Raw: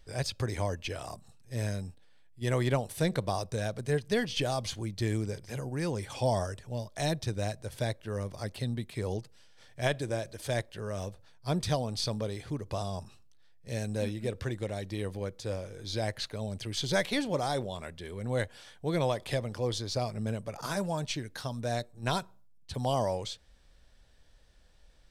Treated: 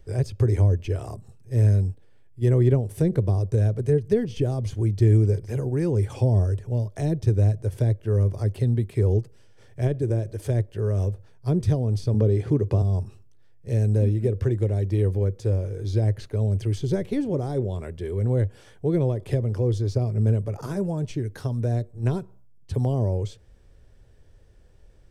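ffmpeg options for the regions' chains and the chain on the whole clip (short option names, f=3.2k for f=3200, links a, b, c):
-filter_complex "[0:a]asettb=1/sr,asplit=3[a][b][c];[a]atrim=end=12.144[d];[b]atrim=start=12.14:end=12.82,asetpts=PTS-STARTPTS,afade=t=in:d=0.004:c=qsin,afade=t=out:st=0.676:d=0.004:c=qsin,highpass=110,highshelf=f=9.4k:g=-9,acontrast=34[e];[c]atrim=start=12.816[f];[d][e]acrossfade=d=0.004:c1=hsin:c2=qsin[g];[g][f]acrossfade=d=0.004:c1=qsin:c2=hsin,lowshelf=f=360:g=6.5,acrossover=split=420[h][i];[i]acompressor=threshold=-38dB:ratio=6[j];[h][j]amix=inputs=2:normalize=0,equalizer=f=100:t=o:w=0.67:g=11,equalizer=f=400:t=o:w=0.67:g=11,equalizer=f=4k:t=o:w=0.67:g=-7"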